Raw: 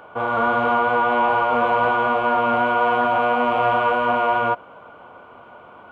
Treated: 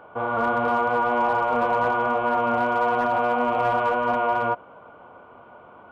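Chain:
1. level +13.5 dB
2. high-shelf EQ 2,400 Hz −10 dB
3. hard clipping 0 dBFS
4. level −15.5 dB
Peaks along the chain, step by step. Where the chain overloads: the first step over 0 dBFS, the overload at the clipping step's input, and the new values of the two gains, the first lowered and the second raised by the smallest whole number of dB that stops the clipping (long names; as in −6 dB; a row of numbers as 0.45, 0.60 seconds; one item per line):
+4.5, +3.5, 0.0, −15.5 dBFS
step 1, 3.5 dB
step 1 +9.5 dB, step 4 −11.5 dB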